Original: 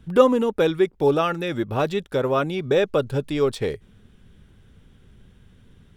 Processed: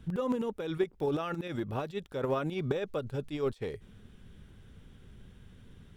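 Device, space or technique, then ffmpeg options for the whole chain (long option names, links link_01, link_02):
de-esser from a sidechain: -filter_complex "[0:a]asplit=2[link_01][link_02];[link_02]highpass=frequency=6900:width=0.5412,highpass=frequency=6900:width=1.3066,apad=whole_len=262847[link_03];[link_01][link_03]sidechaincompress=threshold=-60dB:ratio=16:attack=0.75:release=68,volume=-1.5dB"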